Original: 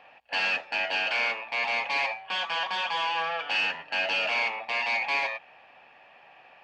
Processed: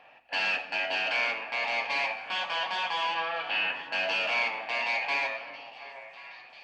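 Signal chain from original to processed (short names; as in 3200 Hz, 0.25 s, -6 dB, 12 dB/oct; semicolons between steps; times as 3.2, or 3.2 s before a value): 3.14–3.75 LPF 5300 Hz -> 3300 Hz 24 dB/oct; delay with a stepping band-pass 0.361 s, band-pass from 210 Hz, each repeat 1.4 oct, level -6.5 dB; on a send at -8 dB: reverb RT60 1.1 s, pre-delay 3 ms; on the sum: gain -2 dB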